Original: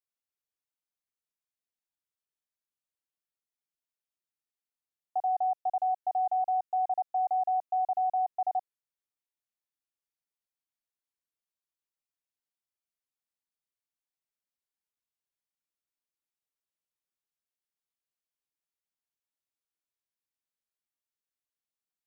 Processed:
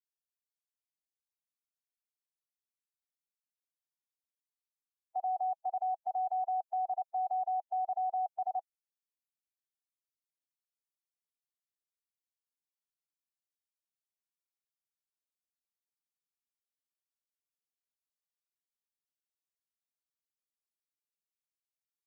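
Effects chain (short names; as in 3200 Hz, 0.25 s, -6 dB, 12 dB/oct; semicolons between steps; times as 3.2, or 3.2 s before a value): per-bin expansion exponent 2; limiter -28.5 dBFS, peak gain reduction 4.5 dB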